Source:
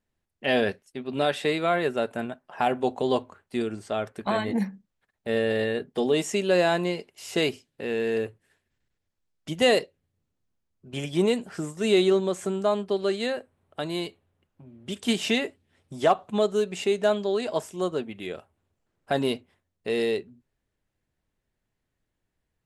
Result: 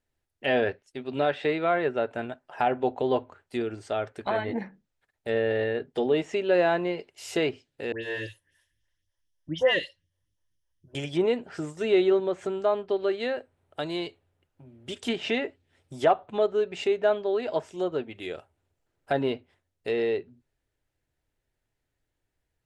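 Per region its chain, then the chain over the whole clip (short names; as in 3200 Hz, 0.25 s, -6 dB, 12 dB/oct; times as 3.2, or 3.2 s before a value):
7.92–10.95 ripple EQ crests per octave 1.2, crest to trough 10 dB + phaser stages 2, 3.9 Hz, lowest notch 160–1000 Hz + dispersion highs, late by 0.112 s, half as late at 2300 Hz
whole clip: notch 1100 Hz, Q 11; treble ducked by the level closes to 2400 Hz, closed at -22.5 dBFS; bell 200 Hz -12.5 dB 0.35 oct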